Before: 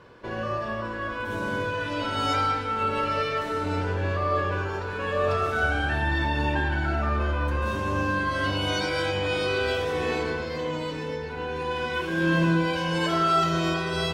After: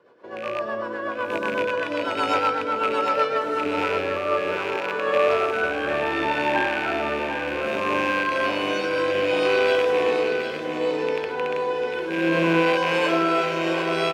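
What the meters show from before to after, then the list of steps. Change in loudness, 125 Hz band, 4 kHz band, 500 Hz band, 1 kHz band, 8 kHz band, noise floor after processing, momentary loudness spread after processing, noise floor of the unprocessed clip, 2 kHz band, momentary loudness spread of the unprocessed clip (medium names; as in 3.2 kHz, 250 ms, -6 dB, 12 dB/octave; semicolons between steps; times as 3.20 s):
+3.0 dB, -10.0 dB, +1.0 dB, +6.5 dB, +2.5 dB, no reading, -30 dBFS, 7 LU, -33 dBFS, +3.0 dB, 8 LU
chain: rattle on loud lows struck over -32 dBFS, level -17 dBFS; high-pass 610 Hz 12 dB/octave; tilt shelf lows +9.5 dB, about 810 Hz; level rider gain up to 9 dB; rotary cabinet horn 8 Hz, later 0.65 Hz, at 3.10 s; feedback delay 749 ms, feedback 40%, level -7.5 dB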